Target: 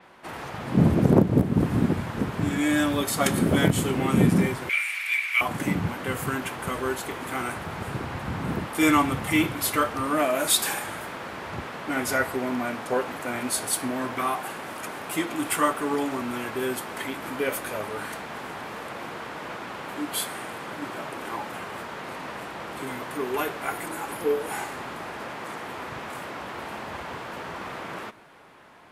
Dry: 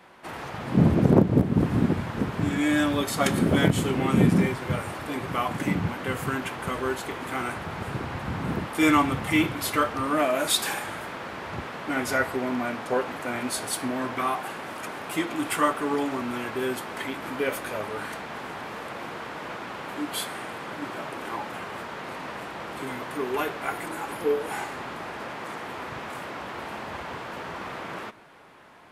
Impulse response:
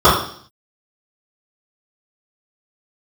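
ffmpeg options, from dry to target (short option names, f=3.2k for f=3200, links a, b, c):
-filter_complex "[0:a]asettb=1/sr,asplit=3[a][b][c];[a]atrim=end=4.694[d];[b]atrim=start=4.69:end=5.41,asetpts=PTS-STARTPTS,afade=t=in:d=0.004:c=qsin,afade=t=out:st=0.716:d=0.004:c=qsin,highpass=f=2.3k:t=q:w=11[e];[c]atrim=start=5.406[f];[d][e]acrossfade=d=0.004:c1=hsin:c2=qsin[g];[g][f]acrossfade=d=0.004:c1=qsin:c2=hsin,adynamicequalizer=threshold=0.00398:dfrequency=6900:dqfactor=0.7:tfrequency=6900:tqfactor=0.7:attack=5:release=100:ratio=0.375:range=3:mode=boostabove:tftype=highshelf"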